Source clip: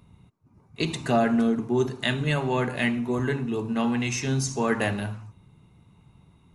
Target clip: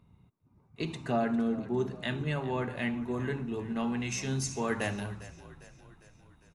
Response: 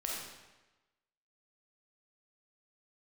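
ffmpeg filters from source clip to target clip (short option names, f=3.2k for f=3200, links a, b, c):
-filter_complex "[0:a]asetnsamples=n=441:p=0,asendcmd='3.01 highshelf g -4;4.09 highshelf g 3',highshelf=f=3.8k:g=-9,asplit=6[a][b][c][d][e][f];[b]adelay=402,afreqshift=-35,volume=-17dB[g];[c]adelay=804,afreqshift=-70,volume=-22.2dB[h];[d]adelay=1206,afreqshift=-105,volume=-27.4dB[i];[e]adelay=1608,afreqshift=-140,volume=-32.6dB[j];[f]adelay=2010,afreqshift=-175,volume=-37.8dB[k];[a][g][h][i][j][k]amix=inputs=6:normalize=0,volume=-7dB"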